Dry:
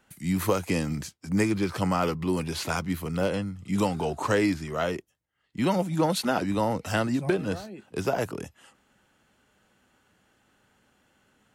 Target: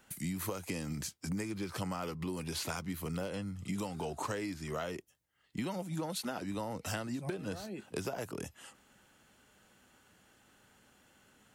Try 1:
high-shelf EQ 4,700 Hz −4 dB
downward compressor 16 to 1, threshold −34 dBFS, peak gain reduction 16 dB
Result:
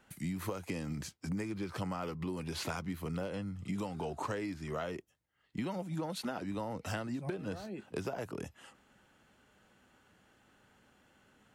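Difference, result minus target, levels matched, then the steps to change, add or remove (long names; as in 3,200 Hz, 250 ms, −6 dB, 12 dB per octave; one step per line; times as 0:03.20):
8,000 Hz band −6.0 dB
change: high-shelf EQ 4,700 Hz +6.5 dB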